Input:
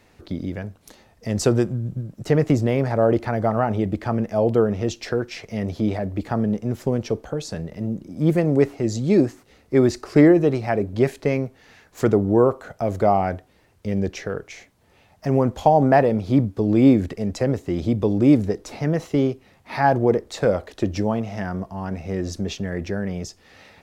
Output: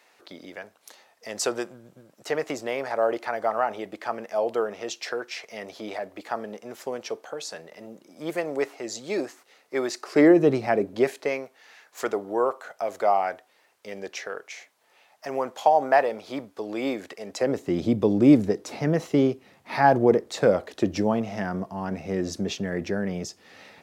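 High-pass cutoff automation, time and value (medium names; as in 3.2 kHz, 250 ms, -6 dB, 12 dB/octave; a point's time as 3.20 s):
10.00 s 650 Hz
10.51 s 160 Hz
11.45 s 670 Hz
17.22 s 670 Hz
17.71 s 160 Hz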